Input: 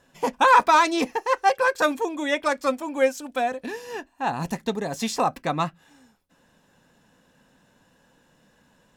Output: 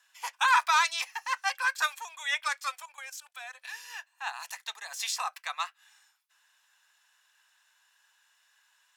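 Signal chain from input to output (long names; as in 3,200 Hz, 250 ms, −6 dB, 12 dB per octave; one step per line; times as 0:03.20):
Bessel high-pass filter 1,600 Hz, order 6
0:02.85–0:03.55: output level in coarse steps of 14 dB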